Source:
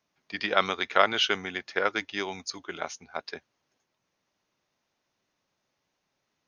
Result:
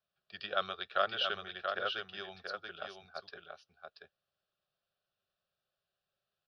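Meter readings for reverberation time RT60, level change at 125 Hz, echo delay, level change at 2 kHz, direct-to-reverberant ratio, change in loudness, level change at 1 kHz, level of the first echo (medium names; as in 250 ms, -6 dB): no reverb, -11.5 dB, 683 ms, -10.0 dB, no reverb, -9.0 dB, -8.5 dB, -5.5 dB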